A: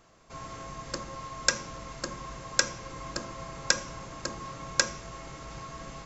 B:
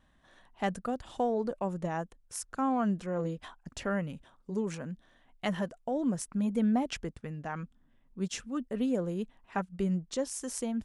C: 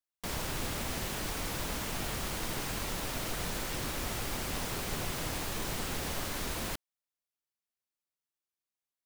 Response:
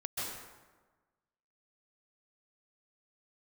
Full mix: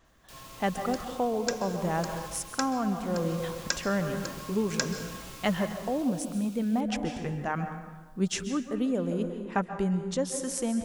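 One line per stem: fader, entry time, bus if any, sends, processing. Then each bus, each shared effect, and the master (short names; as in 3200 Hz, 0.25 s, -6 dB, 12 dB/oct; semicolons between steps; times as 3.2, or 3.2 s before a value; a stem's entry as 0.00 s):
-8.5 dB, 0.00 s, send -11.5 dB, dry
+0.5 dB, 0.00 s, send -7.5 dB, dry
-9.5 dB, 0.05 s, send -20.5 dB, steep high-pass 2300 Hz 96 dB/oct; limiter -33.5 dBFS, peak gain reduction 6 dB; fast leveller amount 50%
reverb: on, RT60 1.3 s, pre-delay 0.122 s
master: vocal rider within 4 dB 0.5 s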